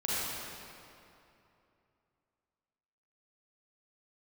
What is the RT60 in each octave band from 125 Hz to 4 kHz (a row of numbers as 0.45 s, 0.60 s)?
3.2 s, 2.9 s, 2.9 s, 2.8 s, 2.4 s, 1.9 s